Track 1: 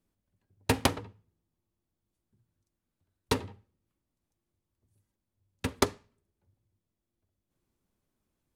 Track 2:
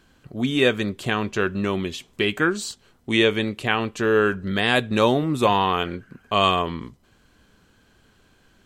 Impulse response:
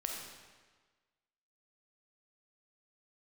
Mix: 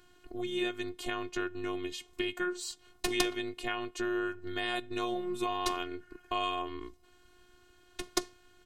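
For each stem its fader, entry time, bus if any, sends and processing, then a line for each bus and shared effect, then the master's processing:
-5.5 dB, 2.35 s, no send, peaking EQ 5.9 kHz +8 dB 1.7 oct
-1.0 dB, 0.00 s, no send, compression 2.5:1, threshold -32 dBFS, peak gain reduction 12.5 dB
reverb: none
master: robot voice 359 Hz

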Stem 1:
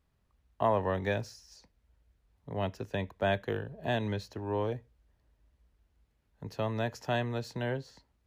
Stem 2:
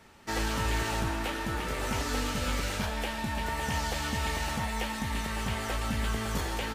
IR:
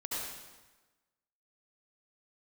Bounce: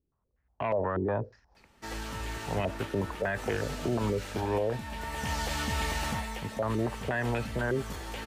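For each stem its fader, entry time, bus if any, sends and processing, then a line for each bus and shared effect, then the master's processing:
-6.0 dB, 0.00 s, no send, level rider gain up to 6 dB; waveshaping leveller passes 1; step-sequenced low-pass 8.3 Hz 360–2400 Hz
+0.5 dB, 1.55 s, no send, auto duck -8 dB, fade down 0.30 s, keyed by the first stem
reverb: none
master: peak limiter -20.5 dBFS, peak gain reduction 11.5 dB

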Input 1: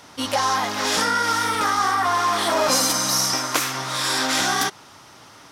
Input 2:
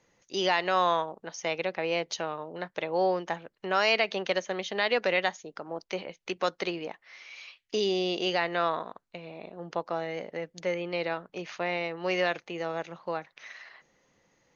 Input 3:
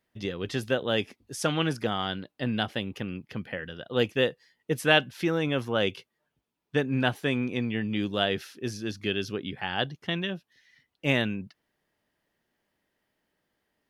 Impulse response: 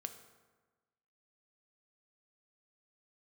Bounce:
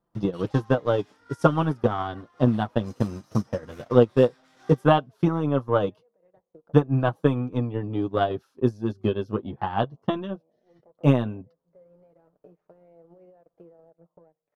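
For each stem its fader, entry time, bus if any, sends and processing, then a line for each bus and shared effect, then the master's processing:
-11.0 dB, 0.15 s, send -21 dB, tone controls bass -5 dB, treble -9 dB; peak limiter -16 dBFS, peak gain reduction 9 dB; saturation -19.5 dBFS, distortion -18 dB; auto duck -11 dB, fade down 1.15 s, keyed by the third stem
-15.5 dB, 1.10 s, send -3 dB, FFT filter 350 Hz 0 dB, 560 Hz +5 dB, 3 kHz -27 dB; compression 3:1, threshold -37 dBFS, peak gain reduction 13 dB; peak limiter -34.5 dBFS, peak gain reduction 10.5 dB
+2.5 dB, 0.00 s, no send, resonant high shelf 1.5 kHz -10 dB, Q 3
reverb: on, RT60 1.3 s, pre-delay 3 ms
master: bass shelf 320 Hz +5.5 dB; transient shaper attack +9 dB, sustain -11 dB; flange 0.15 Hz, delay 5.8 ms, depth 3.2 ms, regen -20%

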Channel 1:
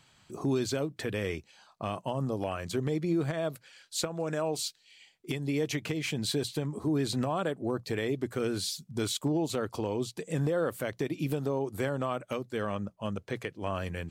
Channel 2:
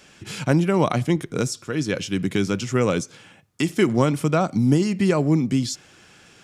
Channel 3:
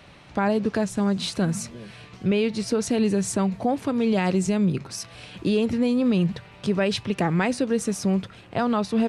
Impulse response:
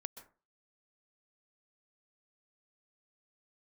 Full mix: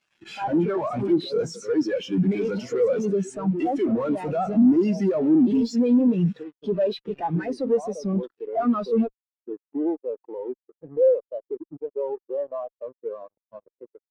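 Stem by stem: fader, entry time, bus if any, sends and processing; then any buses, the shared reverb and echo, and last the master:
-6.0 dB, 0.50 s, no send, steep low-pass 1.1 kHz 48 dB/octave
0.0 dB, 0.00 s, send -8.5 dB, none
-4.0 dB, 0.00 s, no send, none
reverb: on, RT60 0.35 s, pre-delay 117 ms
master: frequency weighting A; fuzz box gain 50 dB, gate -45 dBFS; spectral contrast expander 2.5:1

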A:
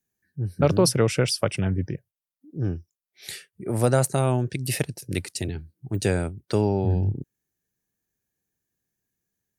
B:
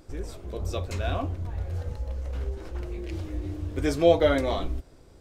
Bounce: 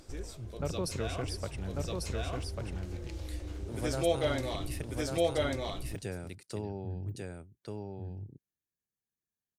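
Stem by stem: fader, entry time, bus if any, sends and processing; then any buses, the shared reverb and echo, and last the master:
-16.0 dB, 0.00 s, no send, echo send -3 dB, none
-2.5 dB, 0.00 s, no send, echo send -8 dB, peaking EQ 6.8 kHz +8.5 dB 2.6 oct; auto duck -8 dB, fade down 0.40 s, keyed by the first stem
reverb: none
echo: delay 1144 ms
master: none

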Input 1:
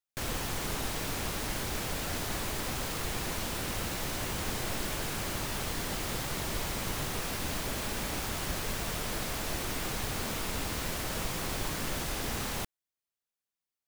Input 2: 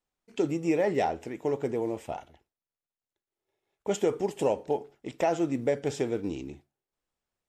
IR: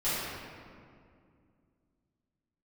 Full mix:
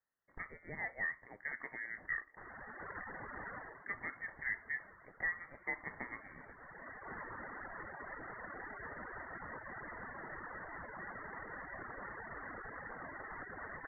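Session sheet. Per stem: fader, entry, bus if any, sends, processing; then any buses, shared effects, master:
-1.5 dB, 2.20 s, no send, spectral gate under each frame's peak -25 dB strong; reverb removal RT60 1.5 s; auto duck -15 dB, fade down 0.30 s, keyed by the second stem
-6.0 dB, 0.00 s, no send, none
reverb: none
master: Chebyshev high-pass 670 Hz, order 4; gain riding within 5 dB 0.5 s; frequency inversion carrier 2.6 kHz

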